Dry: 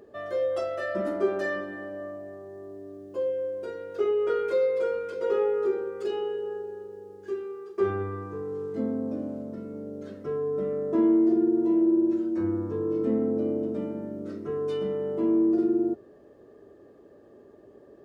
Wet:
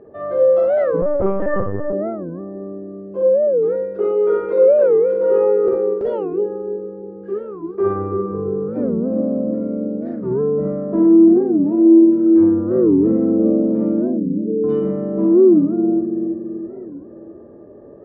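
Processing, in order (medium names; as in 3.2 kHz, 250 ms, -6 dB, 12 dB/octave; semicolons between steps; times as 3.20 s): 14.02–14.64 s: spectral contrast enhancement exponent 3.8; Bessel low-pass 970 Hz, order 2; in parallel at +2 dB: peak limiter -21.5 dBFS, peak gain reduction 7 dB; on the sum: bucket-brigade echo 331 ms, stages 1024, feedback 51%, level -3 dB; 5.68–6.10 s: gate with hold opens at -14 dBFS; reverberation RT60 0.35 s, pre-delay 37 ms, DRR 0.5 dB; 1.02–1.93 s: LPC vocoder at 8 kHz pitch kept; warped record 45 rpm, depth 250 cents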